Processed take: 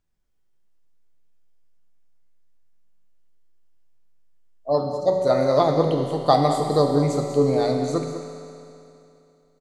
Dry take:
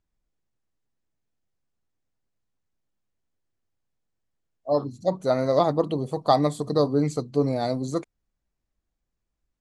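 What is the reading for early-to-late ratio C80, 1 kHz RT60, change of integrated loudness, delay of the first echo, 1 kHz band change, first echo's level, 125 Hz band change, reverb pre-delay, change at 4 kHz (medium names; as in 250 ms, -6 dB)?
3.5 dB, 2.8 s, +3.5 dB, 196 ms, +4.0 dB, -11.0 dB, +3.5 dB, 5 ms, +4.0 dB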